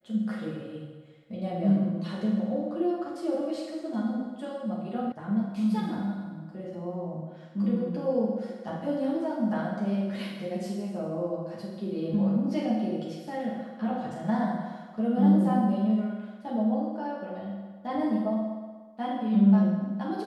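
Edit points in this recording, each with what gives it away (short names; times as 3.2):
5.12 sound cut off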